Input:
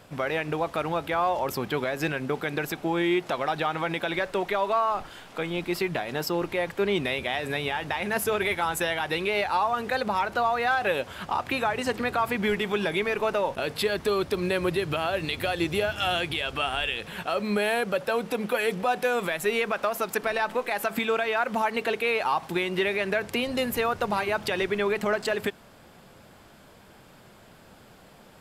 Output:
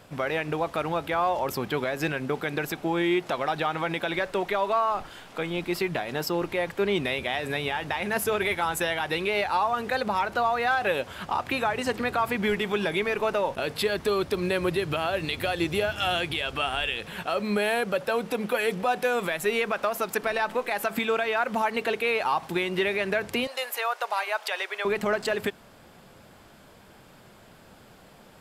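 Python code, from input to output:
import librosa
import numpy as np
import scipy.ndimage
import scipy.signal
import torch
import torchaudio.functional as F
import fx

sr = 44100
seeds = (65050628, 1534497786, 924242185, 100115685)

y = fx.highpass(x, sr, hz=600.0, slope=24, at=(23.47, 24.85))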